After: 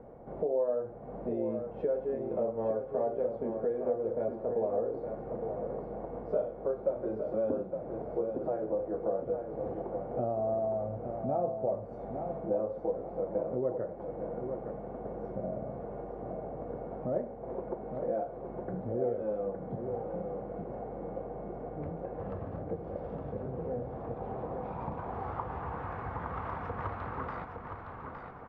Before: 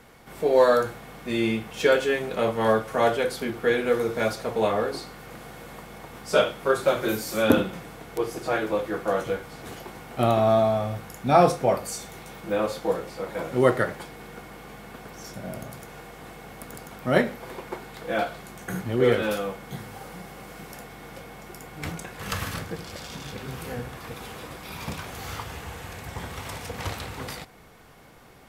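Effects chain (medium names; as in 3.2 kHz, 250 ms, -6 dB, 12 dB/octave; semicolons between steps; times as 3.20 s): low-pass 3.2 kHz 6 dB/octave; compression 4:1, threshold -37 dBFS, peak gain reduction 20.5 dB; low-pass sweep 600 Hz -> 1.2 kHz, 23.79–25.95 s; on a send: feedback delay 863 ms, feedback 33%, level -6.5 dB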